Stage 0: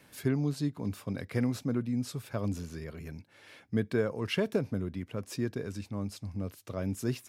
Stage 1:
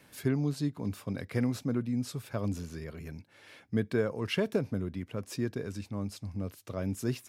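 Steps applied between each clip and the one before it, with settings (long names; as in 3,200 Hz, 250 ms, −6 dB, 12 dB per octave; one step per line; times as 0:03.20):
no processing that can be heard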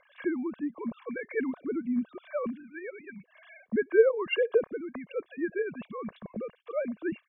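three sine waves on the formant tracks
treble cut that deepens with the level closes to 1,600 Hz, closed at −28 dBFS
comb filter 1.8 ms, depth 59%
level +3.5 dB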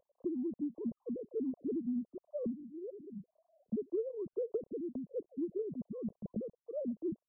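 Gaussian smoothing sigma 17 samples
downward compressor 12 to 1, threshold −34 dBFS, peak gain reduction 15.5 dB
level +1.5 dB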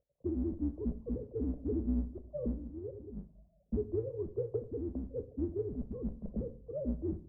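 sub-octave generator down 2 octaves, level 0 dB
low-pass that shuts in the quiet parts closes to 370 Hz, open at −33.5 dBFS
convolution reverb RT60 0.55 s, pre-delay 7 ms, DRR 10 dB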